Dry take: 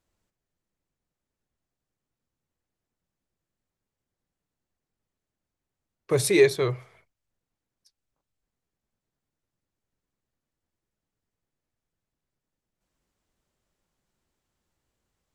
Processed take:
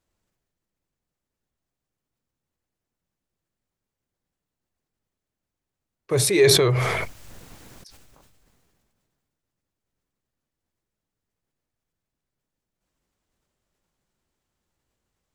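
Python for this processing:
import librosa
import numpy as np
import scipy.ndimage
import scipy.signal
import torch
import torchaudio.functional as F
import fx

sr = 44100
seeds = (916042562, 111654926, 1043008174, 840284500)

y = fx.sustainer(x, sr, db_per_s=24.0)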